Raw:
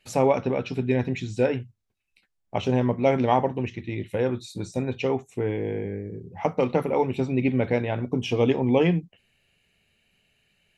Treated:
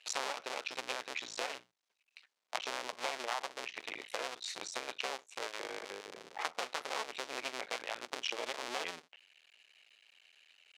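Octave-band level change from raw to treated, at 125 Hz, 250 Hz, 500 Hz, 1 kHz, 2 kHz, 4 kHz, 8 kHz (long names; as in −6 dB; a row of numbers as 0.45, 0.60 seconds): below −40 dB, −29.5 dB, −20.0 dB, −11.0 dB, −4.5 dB, +0.5 dB, can't be measured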